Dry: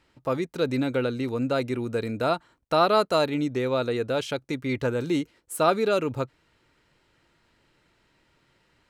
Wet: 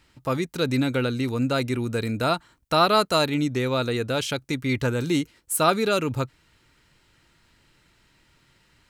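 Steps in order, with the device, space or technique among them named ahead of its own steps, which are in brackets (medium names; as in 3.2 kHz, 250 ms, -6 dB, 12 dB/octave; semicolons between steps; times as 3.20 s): smiley-face EQ (bass shelf 130 Hz +4 dB; peaking EQ 520 Hz -5.5 dB 1.6 oct; treble shelf 5.4 kHz +7 dB); trim +4 dB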